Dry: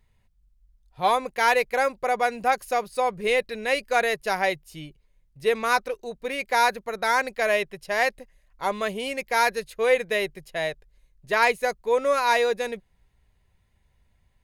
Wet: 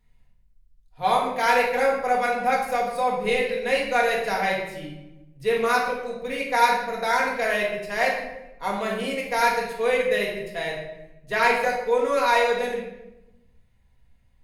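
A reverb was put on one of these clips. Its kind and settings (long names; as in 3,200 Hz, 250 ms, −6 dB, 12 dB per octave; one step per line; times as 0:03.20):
rectangular room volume 380 cubic metres, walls mixed, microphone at 1.8 metres
level −4.5 dB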